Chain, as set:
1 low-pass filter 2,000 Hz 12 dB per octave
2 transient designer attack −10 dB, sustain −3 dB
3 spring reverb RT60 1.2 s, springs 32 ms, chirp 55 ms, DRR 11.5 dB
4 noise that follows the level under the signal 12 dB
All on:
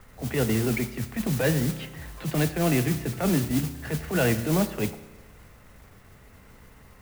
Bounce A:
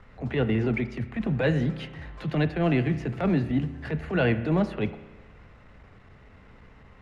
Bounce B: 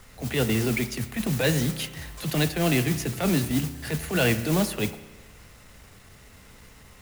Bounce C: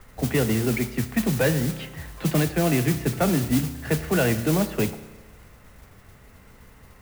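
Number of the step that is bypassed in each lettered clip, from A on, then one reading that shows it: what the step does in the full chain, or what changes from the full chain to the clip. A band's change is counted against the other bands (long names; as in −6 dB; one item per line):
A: 4, 4 kHz band −5.0 dB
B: 1, 4 kHz band +5.5 dB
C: 2, change in momentary loudness spread −2 LU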